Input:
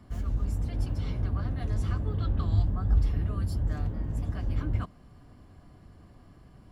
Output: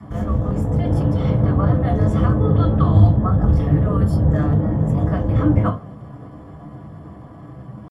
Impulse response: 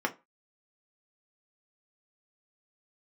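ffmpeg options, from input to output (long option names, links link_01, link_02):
-filter_complex "[0:a]adynamicequalizer=threshold=0.001:dfrequency=520:dqfactor=3.2:tfrequency=520:tqfactor=3.2:attack=5:release=100:ratio=0.375:range=3:mode=boostabove:tftype=bell,atempo=0.85[link_01];[1:a]atrim=start_sample=2205,asetrate=26019,aresample=44100[link_02];[link_01][link_02]afir=irnorm=-1:irlink=0,volume=4.5dB"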